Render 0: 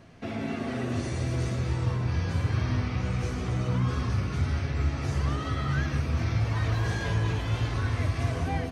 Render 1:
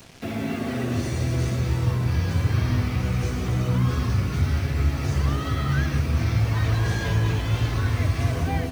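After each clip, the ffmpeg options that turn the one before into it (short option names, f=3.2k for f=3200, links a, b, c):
-filter_complex "[0:a]equalizer=f=920:t=o:w=2.4:g=-2.5,acrossover=split=190|1200|2600[a][b][c][d];[d]acompressor=mode=upward:threshold=-51dB:ratio=2.5[e];[a][b][c][e]amix=inputs=4:normalize=0,acrusher=bits=7:mix=0:aa=0.5,volume=5dB"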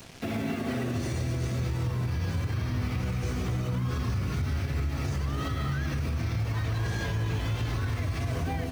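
-af "alimiter=limit=-22dB:level=0:latency=1:release=102"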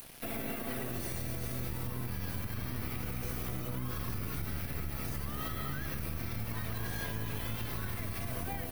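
-filter_complex "[0:a]acrossover=split=520[a][b];[a]aeval=exprs='max(val(0),0)':c=same[c];[c][b]amix=inputs=2:normalize=0,aexciter=amount=7.4:drive=5.1:freq=9.6k,volume=-5dB"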